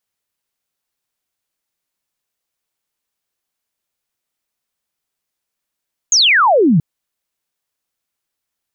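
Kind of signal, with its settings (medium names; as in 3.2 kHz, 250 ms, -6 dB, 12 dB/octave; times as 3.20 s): laser zap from 6.9 kHz, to 140 Hz, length 0.68 s sine, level -8 dB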